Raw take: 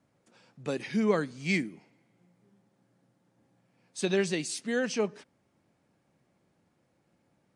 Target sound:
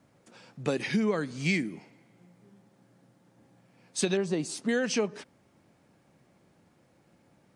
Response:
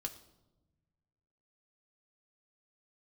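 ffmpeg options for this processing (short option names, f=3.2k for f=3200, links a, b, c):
-filter_complex "[0:a]asettb=1/sr,asplit=3[a][b][c];[a]atrim=end=4.174[d];[b]atrim=start=4.17:end=4.69,asetpts=PTS-STARTPTS,afade=t=in:d=0.004:c=qsin,afade=t=out:st=0.516:d=0.004:c=qsin,highshelf=f=1.5k:t=q:w=1.5:g=-9[e];[c]atrim=start=4.686[f];[d][e]acrossfade=d=0.004:c1=hsin:c2=qsin[g];[g][f]acrossfade=d=0.004:c1=qsin:c2=hsin,acompressor=threshold=-31dB:ratio=10,volume=7.5dB"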